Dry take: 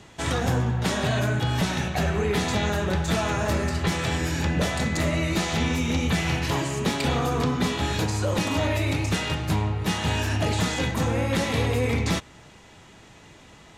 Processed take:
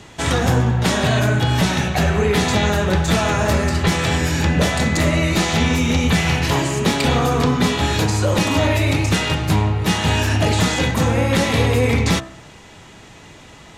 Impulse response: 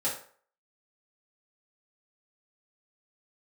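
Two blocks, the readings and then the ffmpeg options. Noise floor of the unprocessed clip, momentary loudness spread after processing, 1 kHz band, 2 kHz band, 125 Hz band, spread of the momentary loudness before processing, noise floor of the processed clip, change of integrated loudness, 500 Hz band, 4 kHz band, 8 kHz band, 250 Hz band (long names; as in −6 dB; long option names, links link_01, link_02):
−50 dBFS, 2 LU, +7.0 dB, +7.5 dB, +7.5 dB, 2 LU, −42 dBFS, +7.0 dB, +7.0 dB, +7.5 dB, +7.5 dB, +7.0 dB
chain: -af "bandreject=frequency=65.84:width_type=h:width=4,bandreject=frequency=131.68:width_type=h:width=4,bandreject=frequency=197.52:width_type=h:width=4,bandreject=frequency=263.36:width_type=h:width=4,bandreject=frequency=329.2:width_type=h:width=4,bandreject=frequency=395.04:width_type=h:width=4,bandreject=frequency=460.88:width_type=h:width=4,bandreject=frequency=526.72:width_type=h:width=4,bandreject=frequency=592.56:width_type=h:width=4,bandreject=frequency=658.4:width_type=h:width=4,bandreject=frequency=724.24:width_type=h:width=4,bandreject=frequency=790.08:width_type=h:width=4,bandreject=frequency=855.92:width_type=h:width=4,bandreject=frequency=921.76:width_type=h:width=4,bandreject=frequency=987.6:width_type=h:width=4,bandreject=frequency=1053.44:width_type=h:width=4,bandreject=frequency=1119.28:width_type=h:width=4,bandreject=frequency=1185.12:width_type=h:width=4,bandreject=frequency=1250.96:width_type=h:width=4,bandreject=frequency=1316.8:width_type=h:width=4,bandreject=frequency=1382.64:width_type=h:width=4,bandreject=frequency=1448.48:width_type=h:width=4,bandreject=frequency=1514.32:width_type=h:width=4,bandreject=frequency=1580.16:width_type=h:width=4,bandreject=frequency=1646:width_type=h:width=4,bandreject=frequency=1711.84:width_type=h:width=4,bandreject=frequency=1777.68:width_type=h:width=4,volume=7.5dB"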